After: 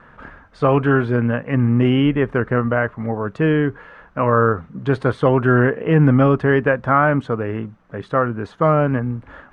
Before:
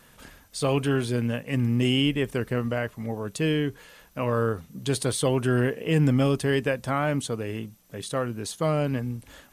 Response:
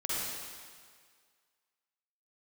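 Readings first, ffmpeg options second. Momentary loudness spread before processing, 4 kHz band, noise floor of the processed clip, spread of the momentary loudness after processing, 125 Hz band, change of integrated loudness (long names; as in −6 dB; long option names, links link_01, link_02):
10 LU, −5.0 dB, −49 dBFS, 9 LU, +7.5 dB, +8.0 dB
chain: -af "lowpass=frequency=1400:width_type=q:width=2.1,volume=7.5dB"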